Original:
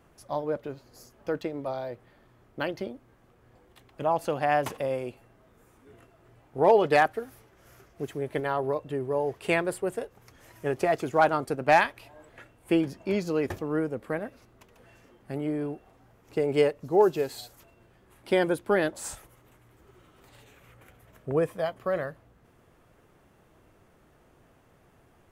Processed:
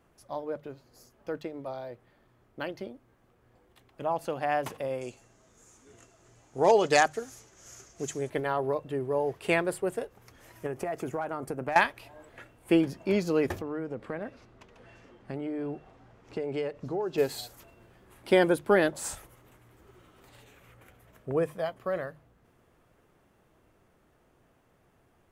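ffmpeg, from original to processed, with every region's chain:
-filter_complex "[0:a]asettb=1/sr,asplit=3[a][b][c];[a]atrim=end=5.014[d];[b]atrim=start=5.01:end=8.3,asetpts=PTS-STARTPTS,afade=t=in:d=0.004:c=qsin,afade=t=out:st=3.286:d=0.004:c=qsin,lowpass=f=6.7k:t=q:w=5.4,aemphasis=mode=production:type=50kf[e];[c]atrim=start=8.296[f];[d][e]acrossfade=d=0.004:c1=hsin:c2=qsin[g];[g][f]acrossfade=d=0.004:c1=qsin:c2=hsin,asettb=1/sr,asplit=3[h][i][j];[h]atrim=end=10.664[k];[i]atrim=start=10.66:end=11.76,asetpts=PTS-STARTPTS,afade=t=in:d=0.004:c=qsin,afade=t=out:st=1.096:d=0.004:c=qsin,equalizer=f=4k:w=1.4:g=-10,acompressor=threshold=-28dB:ratio=12:attack=3.2:release=140:knee=1:detection=peak[l];[j]atrim=start=11.756[m];[k][l]acrossfade=d=0.004:c1=hsin:c2=qsin[n];[n][m]acrossfade=d=0.004:c1=qsin:c2=hsin,asettb=1/sr,asplit=3[o][p][q];[o]atrim=end=13.614[r];[p]atrim=start=13.61:end=17.18,asetpts=PTS-STARTPTS,afade=t=in:d=0.004:c=qsin,afade=t=out:st=3.566:d=0.004:c=qsin,lowpass=5.8k,acompressor=threshold=-33dB:ratio=4:attack=3.2:release=140:knee=1:detection=peak[s];[q]atrim=start=17.176[t];[r][s]acrossfade=d=0.004:c1=hsin:c2=qsin[u];[u][t]acrossfade=d=0.004:c1=qsin:c2=hsin,bandreject=f=50:t=h:w=6,bandreject=f=100:t=h:w=6,bandreject=f=150:t=h:w=6,dynaudnorm=f=400:g=31:m=11.5dB,volume=-5dB"

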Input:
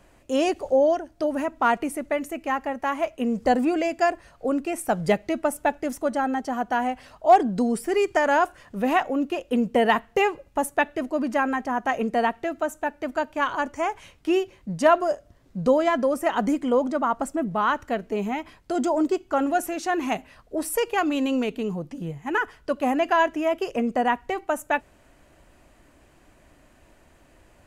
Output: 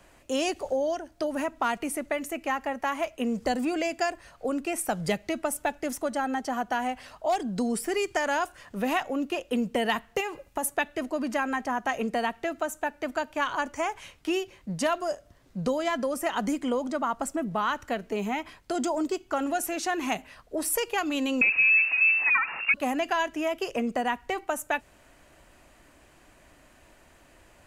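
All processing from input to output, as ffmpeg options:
-filter_complex "[0:a]asettb=1/sr,asplit=3[a][b][c];[a]atrim=end=10.204[d];[b]atrim=start=10.2:end=10.68,asetpts=PTS-STARTPTS,afade=t=in:d=0.004:c=qsin,afade=t=out:st=0.476:d=0.004:c=qsin,highshelf=f=8.1k:g=6,acompressor=threshold=-24dB:ratio=4:attack=3.2:release=140:knee=1:detection=peak[e];[c]atrim=start=10.676[f];[d][e]acrossfade=d=0.004:c1=hsin:c2=qsin[g];[g][f]acrossfade=d=0.004:c1=qsin:c2=hsin,asettb=1/sr,asplit=3[h][i][j];[h]atrim=end=21.414[k];[i]atrim=start=21.41:end=22.74,asetpts=PTS-STARTPTS,afade=t=in:d=0.004:c=qsin,afade=t=out:st=1.326:d=0.004:c=qsin,aeval=exprs='val(0)+0.5*0.0266*sgn(val(0))':c=same,equalizer=f=180:t=o:w=1.2:g=8,lowpass=f=2.4k:t=q:w=0.5098,lowpass=f=2.4k:t=q:w=0.6013,lowpass=f=2.4k:t=q:w=0.9,lowpass=f=2.4k:t=q:w=2.563,afreqshift=-2800[l];[j]atrim=start=22.736[m];[k][l]acrossfade=d=0.004:c1=hsin:c2=qsin[n];[n][m]acrossfade=d=0.004:c1=qsin:c2=hsin,acrossover=split=210|3000[o][p][q];[p]acompressor=threshold=-26dB:ratio=4[r];[o][r][q]amix=inputs=3:normalize=0,tiltshelf=f=680:g=-3"

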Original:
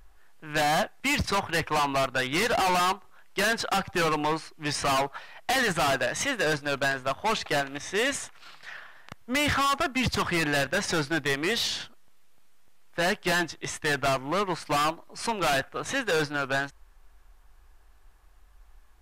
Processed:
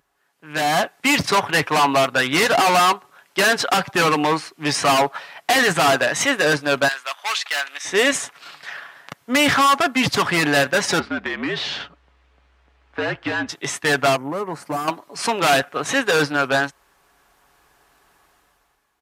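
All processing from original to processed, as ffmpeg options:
-filter_complex "[0:a]asettb=1/sr,asplit=3[a][b][c];[a]atrim=end=6.884[d];[b]atrim=start=6.88:end=7.85,asetpts=PTS-STARTPTS,afade=t=in:d=0.004:c=qsin,afade=t=out:st=0.966:d=0.004:c=qsin,highpass=1.5k,asoftclip=type=hard:threshold=-23dB[e];[c]atrim=start=7.846[f];[d][e]acrossfade=d=0.004:c1=hsin:c2=qsin[g];[g][f]acrossfade=d=0.004:c1=qsin:c2=hsin,asettb=1/sr,asplit=3[h][i][j];[h]atrim=end=10.994[k];[i]atrim=start=10.99:end=13.49,asetpts=PTS-STARTPTS,afade=t=in:d=0.004:c=qsin,afade=t=out:st=2.496:d=0.004:c=qsin,lowpass=2.9k,afreqshift=-63,acompressor=threshold=-31dB:ratio=2.5:attack=3.2:release=140:knee=1:detection=peak[l];[j]atrim=start=13.486[m];[k][l]acrossfade=d=0.004:c1=hsin:c2=qsin[n];[n][m]acrossfade=d=0.004:c1=qsin:c2=hsin,asettb=1/sr,asplit=3[o][p][q];[o]atrim=end=14.164[r];[p]atrim=start=14.16:end=14.88,asetpts=PTS-STARTPTS,afade=t=in:d=0.004:c=qsin,afade=t=out:st=0.716:d=0.004:c=qsin,acompressor=threshold=-30dB:ratio=3:attack=3.2:release=140:knee=1:detection=peak,equalizer=f=3.6k:t=o:w=2.1:g=-15[s];[q]atrim=start=14.876[t];[r][s]acrossfade=d=0.004:c1=hsin:c2=qsin[u];[u][t]acrossfade=d=0.004:c1=qsin:c2=hsin,highpass=160,aecho=1:1:7.1:0.3,dynaudnorm=f=100:g=13:m=13.5dB,volume=-4dB"

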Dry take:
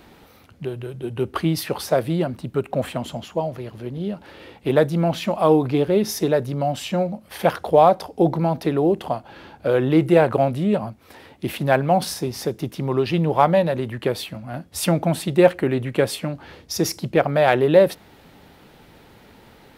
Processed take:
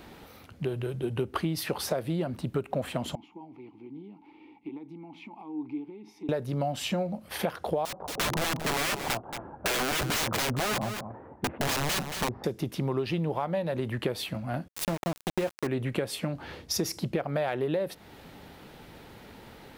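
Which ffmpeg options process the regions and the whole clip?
-filter_complex "[0:a]asettb=1/sr,asplit=3[a][b][c];[a]atrim=end=3.154[d];[b]atrim=start=3.15:end=6.29,asetpts=PTS-STARTPTS,afade=t=in:d=0.004:c=qsin,afade=t=out:st=3.136:d=0.004:c=qsin,acompressor=threshold=-26dB:ratio=10:attack=3.2:release=140:knee=1:detection=peak,asplit=3[e][f][g];[e]bandpass=f=300:t=q:w=8,volume=0dB[h];[f]bandpass=f=870:t=q:w=8,volume=-6dB[i];[g]bandpass=f=2.24k:t=q:w=8,volume=-9dB[j];[h][i][j]amix=inputs=3:normalize=0[k];[c]atrim=start=6.286[l];[d][k]acrossfade=d=0.004:c1=hsin:c2=qsin[m];[m][l]acrossfade=d=0.004:c1=qsin:c2=hsin,asettb=1/sr,asplit=3[n][o][p];[n]atrim=end=7.854[q];[o]atrim=start=7.85:end=12.44,asetpts=PTS-STARTPTS,afade=t=in:d=0.004:c=qsin,afade=t=out:st=4.586:d=0.004:c=qsin,lowpass=f=1.2k:w=0.5412,lowpass=f=1.2k:w=1.3066,aeval=exprs='(mod(8.91*val(0)+1,2)-1)/8.91':c=same,aecho=1:1:227:0.266,atrim=end_sample=202419[r];[p]atrim=start=12.436[s];[q][r]acrossfade=d=0.004:c1=hsin:c2=qsin[t];[t][s]acrossfade=d=0.004:c1=qsin:c2=hsin,asettb=1/sr,asplit=3[u][v][w];[u]atrim=end=14.684[x];[v]atrim=start=14.68:end=15.67,asetpts=PTS-STARTPTS,afade=t=in:d=0.004:c=qsin,afade=t=out:st=0.986:d=0.004:c=qsin,bandreject=f=50:t=h:w=6,bandreject=f=100:t=h:w=6,bandreject=f=150:t=h:w=6,bandreject=f=200:t=h:w=6,bandreject=f=250:t=h:w=6,bandreject=f=300:t=h:w=6,bandreject=f=350:t=h:w=6,aeval=exprs='val(0)*gte(abs(val(0)),0.106)':c=same[y];[w]atrim=start=15.666[z];[x][y]acrossfade=d=0.004:c1=hsin:c2=qsin[aa];[aa][z]acrossfade=d=0.004:c1=qsin:c2=hsin,alimiter=limit=-9.5dB:level=0:latency=1:release=403,acompressor=threshold=-26dB:ratio=6"

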